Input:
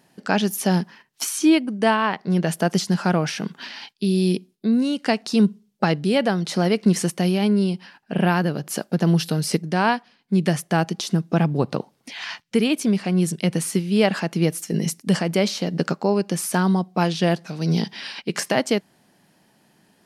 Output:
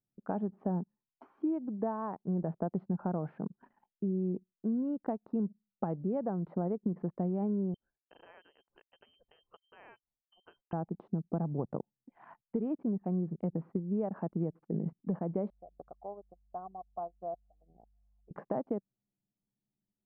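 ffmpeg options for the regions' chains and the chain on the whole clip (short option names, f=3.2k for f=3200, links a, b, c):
-filter_complex "[0:a]asettb=1/sr,asplit=3[a][b][c];[a]atrim=end=7.744[d];[b]atrim=start=7.74:end=10.73,asetpts=PTS-STARTPTS,afade=t=in:d=0.004:c=qsin,afade=t=out:st=2.986:d=0.004:c=qsin,lowpass=f=2.8k:t=q:w=0.5098,lowpass=f=2.8k:t=q:w=0.6013,lowpass=f=2.8k:t=q:w=0.9,lowpass=f=2.8k:t=q:w=2.563,afreqshift=-3300,aemphasis=mode=production:type=75fm[e];[c]atrim=start=10.726[f];[d][e]acrossfade=d=0.004:c1=hsin:c2=qsin[g];[g][f]acrossfade=d=0.004:c1=qsin:c2=hsin,asettb=1/sr,asplit=3[h][i][j];[h]atrim=end=15.504[k];[i]atrim=start=15.5:end=18.31,asetpts=PTS-STARTPTS,afade=t=in:d=0.004:c=qsin,afade=t=out:st=2.806:d=0.004:c=qsin,asplit=3[l][m][n];[l]bandpass=f=730:t=q:w=8,volume=0dB[o];[m]bandpass=f=1.09k:t=q:w=8,volume=-6dB[p];[n]bandpass=f=2.44k:t=q:w=8,volume=-9dB[q];[o][p][q]amix=inputs=3:normalize=0,aeval=exprs='val(0)+0.00251*(sin(2*PI*50*n/s)+sin(2*PI*2*50*n/s)/2+sin(2*PI*3*50*n/s)/3+sin(2*PI*4*50*n/s)/4+sin(2*PI*5*50*n/s)/5)':c=same[r];[j]atrim=start=18.306[s];[k][r]acrossfade=d=0.004:c1=hsin:c2=qsin[t];[t][s]acrossfade=d=0.004:c1=qsin:c2=hsin,acompressor=threshold=-19dB:ratio=16,anlmdn=15.8,lowpass=f=1k:w=0.5412,lowpass=f=1k:w=1.3066,volume=-9dB"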